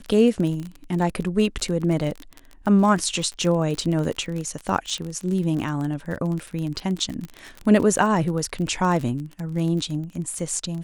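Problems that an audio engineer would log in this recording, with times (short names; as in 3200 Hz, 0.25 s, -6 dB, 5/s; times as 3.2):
crackle 35/s -27 dBFS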